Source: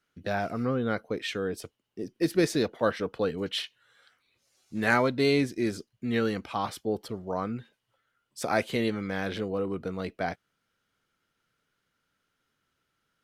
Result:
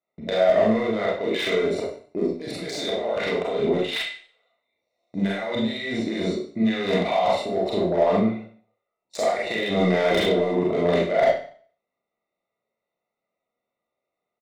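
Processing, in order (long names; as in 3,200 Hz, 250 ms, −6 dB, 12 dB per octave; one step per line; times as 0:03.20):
adaptive Wiener filter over 25 samples
noise gate with hold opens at −53 dBFS
RIAA equalisation recording
notch filter 3,700 Hz, Q 18
compressor whose output falls as the input rises −40 dBFS, ratio −1
hollow resonant body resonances 700/2,200/3,900 Hz, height 16 dB, ringing for 20 ms
soft clipping −21.5 dBFS, distortion −16 dB
high-frequency loss of the air 73 metres
double-tracking delay 25 ms −11 dB
four-comb reverb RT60 0.43 s, combs from 29 ms, DRR −4.5 dB
wrong playback speed 48 kHz file played as 44.1 kHz
slew-rate limiting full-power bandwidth 94 Hz
level +6.5 dB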